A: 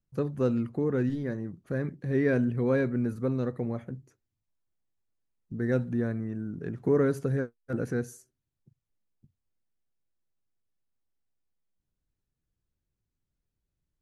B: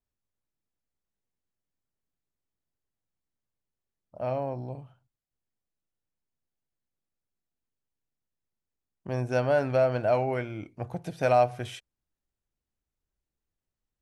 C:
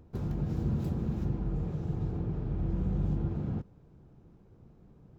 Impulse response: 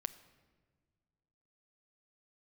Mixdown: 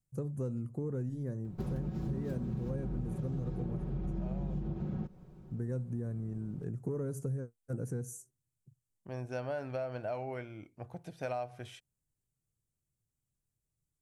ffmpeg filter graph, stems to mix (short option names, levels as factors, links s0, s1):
-filter_complex "[0:a]highshelf=f=4400:g=8,asoftclip=type=tanh:threshold=0.168,equalizer=f=125:t=o:w=1:g=11,equalizer=f=500:t=o:w=1:g=3,equalizer=f=2000:t=o:w=1:g=-8,equalizer=f=4000:t=o:w=1:g=-11,equalizer=f=8000:t=o:w=1:g=11,volume=0.376[s0];[1:a]volume=0.316[s1];[2:a]aecho=1:1:5.4:0.65,adelay=1450,volume=1.26[s2];[s0][s1][s2]amix=inputs=3:normalize=0,acompressor=threshold=0.0224:ratio=6"